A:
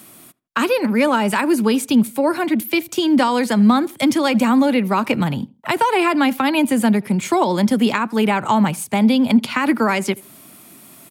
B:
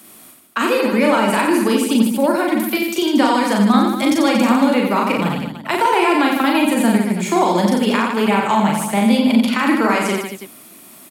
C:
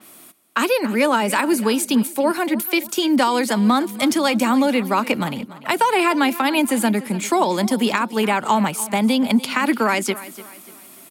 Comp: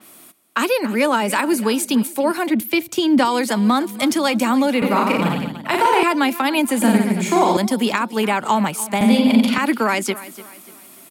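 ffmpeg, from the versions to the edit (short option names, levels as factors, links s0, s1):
-filter_complex "[1:a]asplit=3[s0][s1][s2];[2:a]asplit=5[s3][s4][s5][s6][s7];[s3]atrim=end=2.502[s8];[0:a]atrim=start=2.498:end=3.252[s9];[s4]atrim=start=3.248:end=4.822[s10];[s0]atrim=start=4.818:end=6.032[s11];[s5]atrim=start=6.028:end=6.822[s12];[s1]atrim=start=6.818:end=7.572[s13];[s6]atrim=start=7.568:end=9.012[s14];[s2]atrim=start=9.008:end=9.582[s15];[s7]atrim=start=9.578[s16];[s8][s9]acrossfade=d=0.004:c1=hsin:c2=hsin[s17];[s17][s10]acrossfade=d=0.004:c1=hsin:c2=hsin[s18];[s18][s11]acrossfade=d=0.004:c1=hsin:c2=hsin[s19];[s19][s12]acrossfade=d=0.004:c1=hsin:c2=hsin[s20];[s20][s13]acrossfade=d=0.004:c1=hsin:c2=hsin[s21];[s21][s14]acrossfade=d=0.004:c1=hsin:c2=hsin[s22];[s22][s15]acrossfade=d=0.004:c1=hsin:c2=hsin[s23];[s23][s16]acrossfade=d=0.004:c1=hsin:c2=hsin"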